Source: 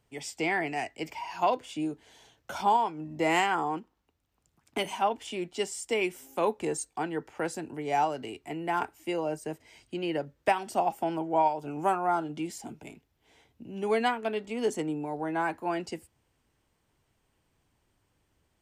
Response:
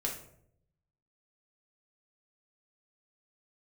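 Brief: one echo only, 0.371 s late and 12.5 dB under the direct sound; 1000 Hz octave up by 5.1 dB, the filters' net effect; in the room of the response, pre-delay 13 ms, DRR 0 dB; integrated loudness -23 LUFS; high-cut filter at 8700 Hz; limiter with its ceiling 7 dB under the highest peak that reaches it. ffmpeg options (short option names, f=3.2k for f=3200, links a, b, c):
-filter_complex "[0:a]lowpass=8.7k,equalizer=f=1k:t=o:g=6.5,alimiter=limit=-16dB:level=0:latency=1,aecho=1:1:371:0.237,asplit=2[a][b];[1:a]atrim=start_sample=2205,adelay=13[c];[b][c]afir=irnorm=-1:irlink=0,volume=-3dB[d];[a][d]amix=inputs=2:normalize=0,volume=3dB"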